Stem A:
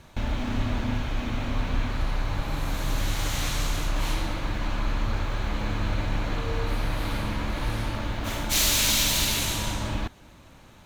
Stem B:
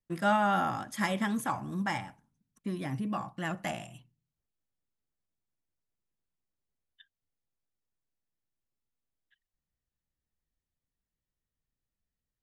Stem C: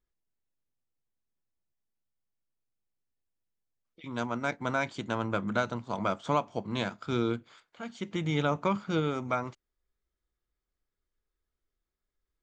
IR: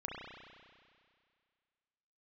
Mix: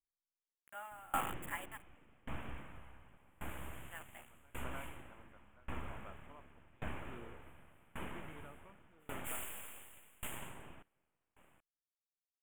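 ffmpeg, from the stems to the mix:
-filter_complex "[0:a]aeval=exprs='abs(val(0))':channel_layout=same,adelay=750,volume=-9dB[link_01];[1:a]highpass=760,adynamicequalizer=threshold=0.00631:dfrequency=2100:dqfactor=1.1:tfrequency=2100:tqfactor=1.1:attack=5:release=100:ratio=0.375:range=2:mode=cutabove:tftype=bell,acrusher=bits=5:mix=0:aa=0.000001,adelay=500,volume=0.5dB,asplit=3[link_02][link_03][link_04];[link_02]atrim=end=1.89,asetpts=PTS-STARTPTS,afade=type=out:start_time=1.886:duration=0.004:curve=hsin[link_05];[link_03]atrim=start=1.89:end=3.78,asetpts=PTS-STARTPTS,volume=0[link_06];[link_04]atrim=start=3.78,asetpts=PTS-STARTPTS,afade=type=in:duration=0.004:curve=hsin[link_07];[link_05][link_06][link_07]concat=n=3:v=0:a=1[link_08];[2:a]volume=-14.5dB[link_09];[link_01][link_08][link_09]amix=inputs=3:normalize=0,asuperstop=centerf=4900:order=8:qfactor=1.1,lowshelf=frequency=270:gain=-5,aeval=exprs='val(0)*pow(10,-28*if(lt(mod(0.88*n/s,1),2*abs(0.88)/1000),1-mod(0.88*n/s,1)/(2*abs(0.88)/1000),(mod(0.88*n/s,1)-2*abs(0.88)/1000)/(1-2*abs(0.88)/1000))/20)':channel_layout=same"

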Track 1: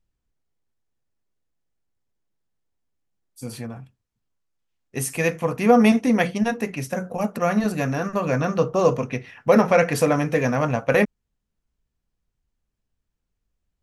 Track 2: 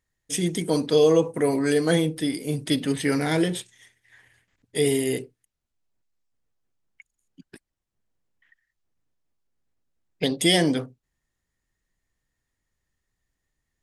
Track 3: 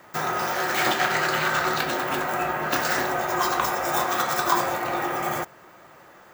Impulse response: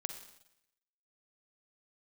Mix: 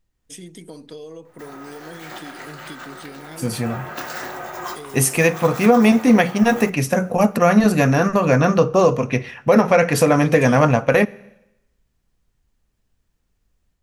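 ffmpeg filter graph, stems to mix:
-filter_complex "[0:a]dynaudnorm=framelen=140:gausssize=3:maxgain=5.5dB,volume=2.5dB,asplit=2[link_01][link_02];[link_02]volume=-13.5dB[link_03];[1:a]acompressor=threshold=-29dB:ratio=6,volume=-6.5dB,asplit=2[link_04][link_05];[2:a]adelay=1250,volume=-8dB,asplit=2[link_06][link_07];[link_07]volume=-11dB[link_08];[link_05]apad=whole_len=334324[link_09];[link_06][link_09]sidechaincompress=threshold=-55dB:ratio=8:attack=37:release=119[link_10];[3:a]atrim=start_sample=2205[link_11];[link_03][link_08]amix=inputs=2:normalize=0[link_12];[link_12][link_11]afir=irnorm=-1:irlink=0[link_13];[link_01][link_04][link_10][link_13]amix=inputs=4:normalize=0,alimiter=limit=-4dB:level=0:latency=1:release=331"

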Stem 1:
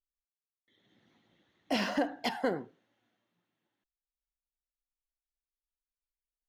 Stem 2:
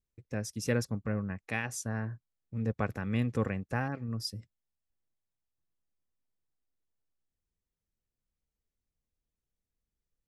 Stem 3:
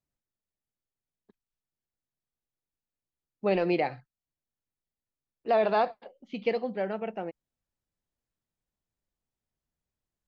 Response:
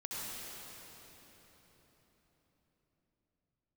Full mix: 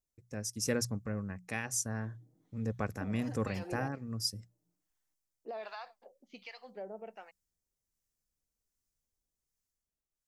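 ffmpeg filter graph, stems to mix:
-filter_complex "[0:a]equalizer=frequency=230:width_type=o:width=2.9:gain=7.5,aecho=1:1:6.5:0.85,acompressor=threshold=-31dB:ratio=2,adelay=1300,volume=-8.5dB[link_01];[1:a]dynaudnorm=framelen=200:gausssize=9:maxgain=11dB,volume=-6dB,afade=type=out:start_time=0.69:duration=0.42:silence=0.421697[link_02];[2:a]highpass=frequency=540:poles=1,volume=-2.5dB[link_03];[link_01][link_03]amix=inputs=2:normalize=0,acrossover=split=870[link_04][link_05];[link_04]aeval=exprs='val(0)*(1-1/2+1/2*cos(2*PI*1.3*n/s))':channel_layout=same[link_06];[link_05]aeval=exprs='val(0)*(1-1/2-1/2*cos(2*PI*1.3*n/s))':channel_layout=same[link_07];[link_06][link_07]amix=inputs=2:normalize=0,alimiter=level_in=10dB:limit=-24dB:level=0:latency=1:release=319,volume=-10dB,volume=0dB[link_08];[link_02][link_08]amix=inputs=2:normalize=0,highshelf=frequency=4500:width_type=q:width=1.5:gain=7,bandreject=frequency=60:width_type=h:width=6,bandreject=frequency=120:width_type=h:width=6,bandreject=frequency=180:width_type=h:width=6"

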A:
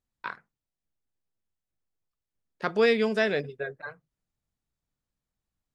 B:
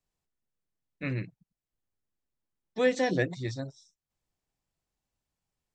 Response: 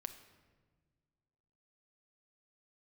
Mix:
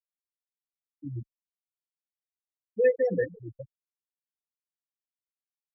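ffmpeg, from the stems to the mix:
-filter_complex "[0:a]volume=-11.5dB,asplit=2[link_01][link_02];[link_02]volume=-9dB[link_03];[1:a]aecho=1:1:6:0.6,volume=0dB,asplit=3[link_04][link_05][link_06];[link_05]volume=-9.5dB[link_07];[link_06]apad=whole_len=253348[link_08];[link_01][link_08]sidechaincompress=threshold=-27dB:ratio=8:attack=16:release=119[link_09];[2:a]atrim=start_sample=2205[link_10];[link_03][link_07]amix=inputs=2:normalize=0[link_11];[link_11][link_10]afir=irnorm=-1:irlink=0[link_12];[link_09][link_04][link_12]amix=inputs=3:normalize=0,highpass=frequency=120:poles=1,afftfilt=real='re*gte(hypot(re,im),0.178)':imag='im*gte(hypot(re,im),0.178)':win_size=1024:overlap=0.75,asplit=2[link_13][link_14];[link_14]adelay=2.4,afreqshift=0.39[link_15];[link_13][link_15]amix=inputs=2:normalize=1"

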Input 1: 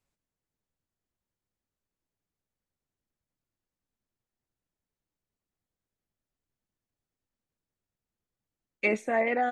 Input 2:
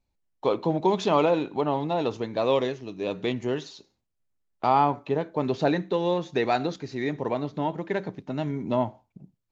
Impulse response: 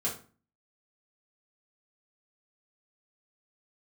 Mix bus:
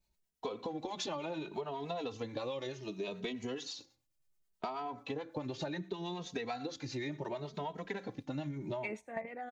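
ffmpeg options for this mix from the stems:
-filter_complex "[0:a]volume=-2.5dB[link_01];[1:a]highshelf=frequency=2900:gain=9,acompressor=threshold=-23dB:ratio=6,asplit=2[link_02][link_03];[link_03]adelay=2.8,afreqshift=0.68[link_04];[link_02][link_04]amix=inputs=2:normalize=1,volume=2dB,asplit=2[link_05][link_06];[link_06]apad=whole_len=419466[link_07];[link_01][link_07]sidechaingate=range=-11dB:threshold=-46dB:ratio=16:detection=peak[link_08];[link_08][link_05]amix=inputs=2:normalize=0,acrossover=split=570[link_09][link_10];[link_09]aeval=exprs='val(0)*(1-0.5/2+0.5/2*cos(2*PI*9.3*n/s))':channel_layout=same[link_11];[link_10]aeval=exprs='val(0)*(1-0.5/2-0.5/2*cos(2*PI*9.3*n/s))':channel_layout=same[link_12];[link_11][link_12]amix=inputs=2:normalize=0,acompressor=threshold=-36dB:ratio=6"

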